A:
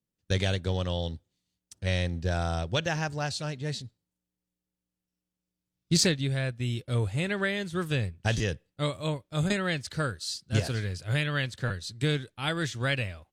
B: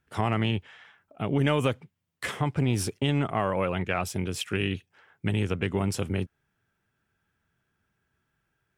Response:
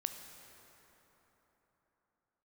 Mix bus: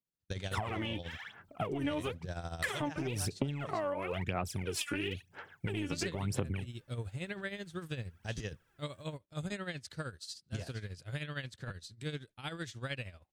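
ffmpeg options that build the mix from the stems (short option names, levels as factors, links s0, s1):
-filter_complex "[0:a]tremolo=f=13:d=0.7,volume=0.398[s0];[1:a]acompressor=threshold=0.0355:ratio=4,aphaser=in_gain=1:out_gain=1:delay=3.5:decay=0.76:speed=1:type=sinusoidal,adelay=400,volume=1.19[s1];[s0][s1]amix=inputs=2:normalize=0,acompressor=threshold=0.0224:ratio=4"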